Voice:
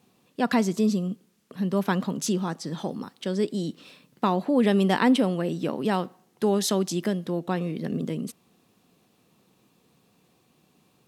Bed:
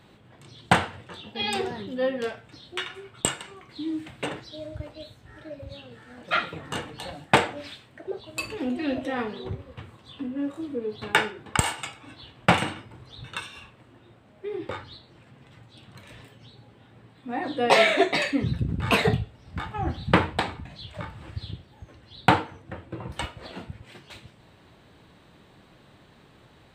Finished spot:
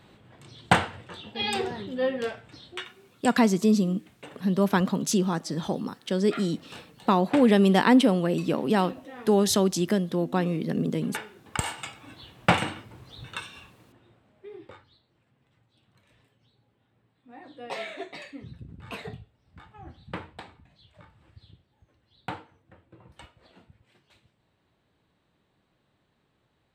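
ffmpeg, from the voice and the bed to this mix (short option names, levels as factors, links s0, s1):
-filter_complex "[0:a]adelay=2850,volume=1.26[s0];[1:a]volume=3.98,afade=t=out:st=2.63:d=0.31:silence=0.211349,afade=t=in:st=11.27:d=0.68:silence=0.237137,afade=t=out:st=13.29:d=1.56:silence=0.16788[s1];[s0][s1]amix=inputs=2:normalize=0"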